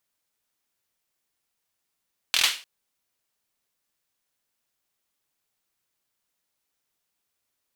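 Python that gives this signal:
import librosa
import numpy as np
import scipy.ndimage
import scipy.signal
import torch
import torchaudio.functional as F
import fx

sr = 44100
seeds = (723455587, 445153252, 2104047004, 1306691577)

y = fx.drum_clap(sr, seeds[0], length_s=0.3, bursts=5, spacing_ms=24, hz=3000.0, decay_s=0.34)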